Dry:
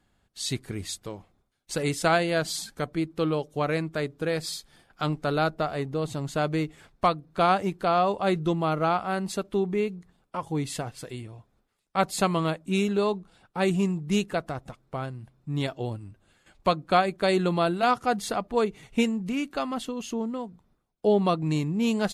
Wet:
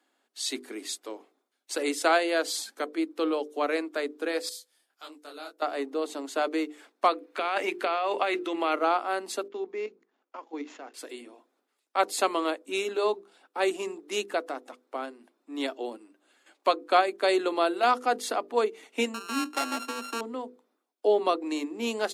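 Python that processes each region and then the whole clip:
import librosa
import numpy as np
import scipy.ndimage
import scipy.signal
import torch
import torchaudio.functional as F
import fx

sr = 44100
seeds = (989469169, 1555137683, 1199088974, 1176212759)

y = fx.chain(x, sr, fx.pre_emphasis(coefficient=0.8),
    fx.detune_double(cents=56), at=(4.49, 5.62))
y = fx.chain(y, sr, fx.hum_notches(base_hz=60, count=6),
    fx.over_compress(threshold_db=-27.0, ratio=-1.0),
    fx.peak_eq(hz=2300.0, db=10.0, octaves=1.1), at=(7.13, 8.76))
y = fx.chain(y, sr, fx.median_filter(points=9),
    fx.cheby_ripple(hz=7100.0, ripple_db=3),
    fx.level_steps(step_db=10), at=(9.48, 10.94))
y = fx.chain(y, sr, fx.sample_sort(block=32),
    fx.lowpass(hz=11000.0, slope=12), at=(19.14, 20.21))
y = scipy.signal.sosfilt(scipy.signal.butter(12, 250.0, 'highpass', fs=sr, output='sos'), y)
y = fx.hum_notches(y, sr, base_hz=50, count=10)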